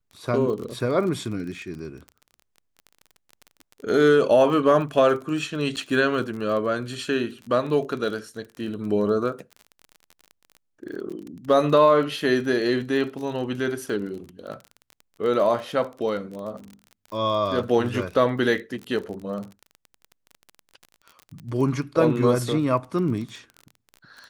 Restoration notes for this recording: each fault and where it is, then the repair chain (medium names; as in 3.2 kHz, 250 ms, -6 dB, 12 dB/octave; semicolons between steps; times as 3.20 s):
crackle 28 per s -32 dBFS
5.76–5.77 s: dropout 8 ms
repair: de-click; interpolate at 5.76 s, 8 ms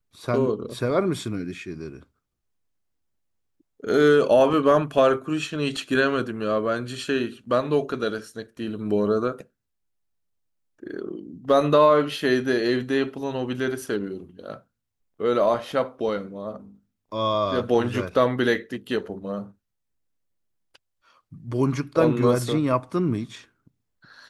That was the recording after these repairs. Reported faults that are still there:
nothing left